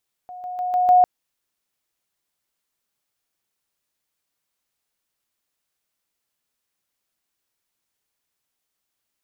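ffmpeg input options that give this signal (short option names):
-f lavfi -i "aevalsrc='pow(10,(-34+6*floor(t/0.15))/20)*sin(2*PI*726*t)':d=0.75:s=44100"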